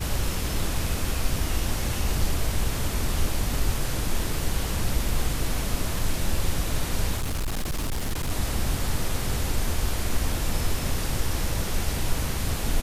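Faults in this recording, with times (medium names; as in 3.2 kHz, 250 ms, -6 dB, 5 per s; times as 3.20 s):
7.16–8.31 s: clipped -23.5 dBFS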